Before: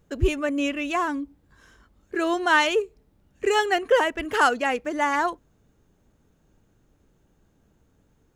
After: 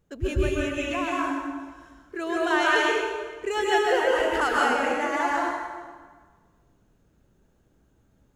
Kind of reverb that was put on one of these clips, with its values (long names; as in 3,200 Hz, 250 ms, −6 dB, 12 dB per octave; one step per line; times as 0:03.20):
dense smooth reverb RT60 1.5 s, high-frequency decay 0.8×, pre-delay 120 ms, DRR −5 dB
level −7 dB